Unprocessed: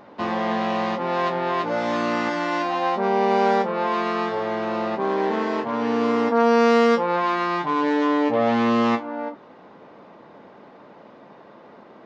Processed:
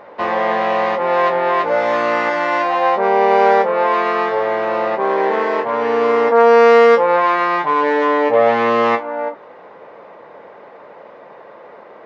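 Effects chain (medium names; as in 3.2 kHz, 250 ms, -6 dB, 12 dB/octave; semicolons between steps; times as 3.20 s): graphic EQ 250/500/1000/2000 Hz -6/+11/+5/+9 dB; trim -1 dB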